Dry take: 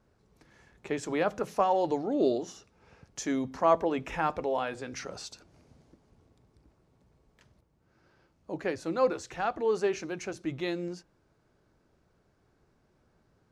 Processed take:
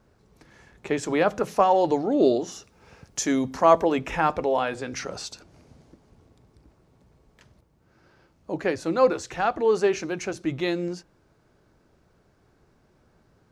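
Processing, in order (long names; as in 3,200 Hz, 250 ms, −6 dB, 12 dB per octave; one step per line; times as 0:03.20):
0:02.52–0:03.99: high-shelf EQ 5,900 Hz +7.5 dB
level +6.5 dB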